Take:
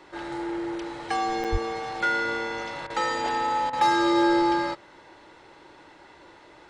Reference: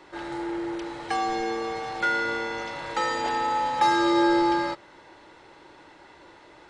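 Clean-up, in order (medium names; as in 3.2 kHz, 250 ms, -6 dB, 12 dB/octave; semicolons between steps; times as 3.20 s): clip repair -13.5 dBFS; de-plosive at 1.51 s; interpolate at 1.44 s, 6.5 ms; interpolate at 2.87/3.70 s, 29 ms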